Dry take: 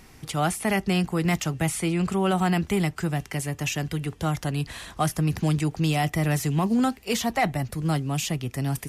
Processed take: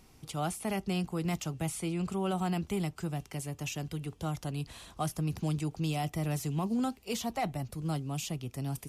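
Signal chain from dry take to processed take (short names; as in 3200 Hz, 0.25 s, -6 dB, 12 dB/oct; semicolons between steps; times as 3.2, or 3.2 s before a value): bell 1800 Hz -8.5 dB 0.57 oct; gain -8.5 dB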